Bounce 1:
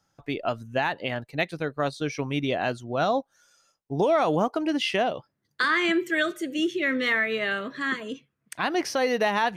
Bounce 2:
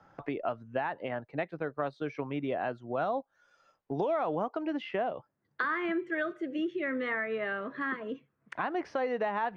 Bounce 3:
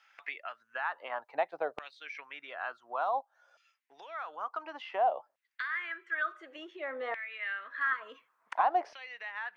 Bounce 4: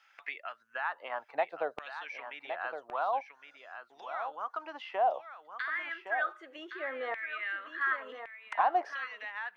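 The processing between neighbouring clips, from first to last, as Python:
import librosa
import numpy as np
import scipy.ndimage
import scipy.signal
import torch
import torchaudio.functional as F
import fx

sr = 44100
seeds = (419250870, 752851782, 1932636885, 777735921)

y1 = scipy.signal.sosfilt(scipy.signal.butter(2, 1400.0, 'lowpass', fs=sr, output='sos'), x)
y1 = fx.low_shelf(y1, sr, hz=320.0, db=-8.0)
y1 = fx.band_squash(y1, sr, depth_pct=70)
y1 = y1 * 10.0 ** (-4.0 / 20.0)
y2 = fx.rider(y1, sr, range_db=5, speed_s=0.5)
y2 = fx.dynamic_eq(y2, sr, hz=1900.0, q=1.0, threshold_db=-48.0, ratio=4.0, max_db=-6)
y2 = fx.filter_lfo_highpass(y2, sr, shape='saw_down', hz=0.56, low_hz=630.0, high_hz=2600.0, q=3.3)
y3 = y2 + 10.0 ** (-8.5 / 20.0) * np.pad(y2, (int(1114 * sr / 1000.0), 0))[:len(y2)]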